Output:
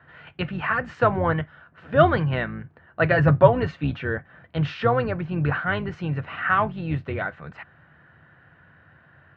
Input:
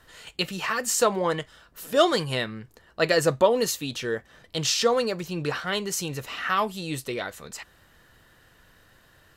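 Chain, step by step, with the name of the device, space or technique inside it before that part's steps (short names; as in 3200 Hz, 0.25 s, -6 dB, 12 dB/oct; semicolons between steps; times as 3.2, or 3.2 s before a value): 3.14–4.03 comb 7.2 ms, depth 61%; sub-octave bass pedal (octaver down 2 oct, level -1 dB; speaker cabinet 75–2400 Hz, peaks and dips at 92 Hz +5 dB, 150 Hz +10 dB, 440 Hz -4 dB, 720 Hz +4 dB, 1500 Hz +7 dB); gain +1 dB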